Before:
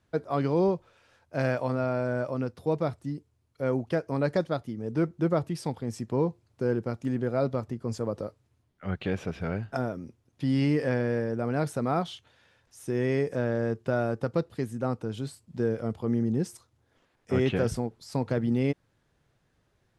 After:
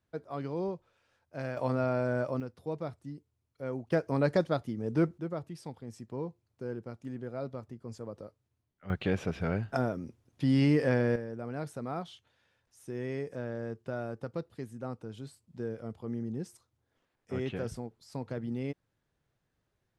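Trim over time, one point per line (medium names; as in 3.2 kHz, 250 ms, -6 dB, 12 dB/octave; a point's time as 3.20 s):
-10 dB
from 1.57 s -1.5 dB
from 2.40 s -9 dB
from 3.92 s -0.5 dB
from 5.18 s -11 dB
from 8.90 s 0 dB
from 11.16 s -9.5 dB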